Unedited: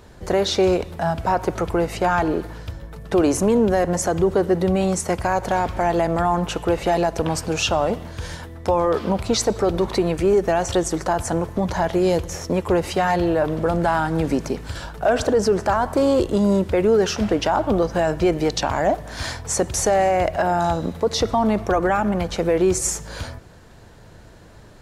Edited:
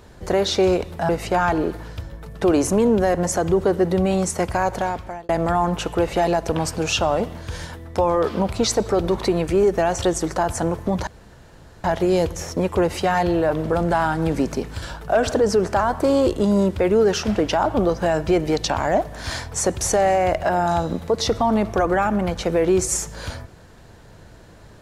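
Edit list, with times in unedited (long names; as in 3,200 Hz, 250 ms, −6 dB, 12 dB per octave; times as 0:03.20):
0:01.09–0:01.79: remove
0:05.39–0:05.99: fade out
0:11.77: splice in room tone 0.77 s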